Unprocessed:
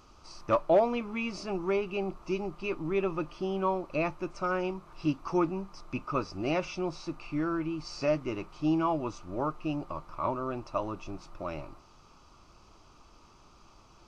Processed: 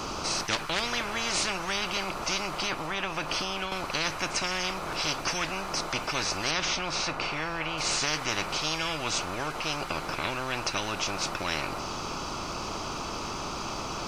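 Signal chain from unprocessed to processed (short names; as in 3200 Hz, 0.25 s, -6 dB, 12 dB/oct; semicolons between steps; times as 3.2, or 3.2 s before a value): 2.62–3.72 compressor 4:1, threshold -33 dBFS, peak gain reduction 8 dB; 6.51–7.78 high shelf 4600 Hz -11 dB; spectral compressor 10:1; gain +3 dB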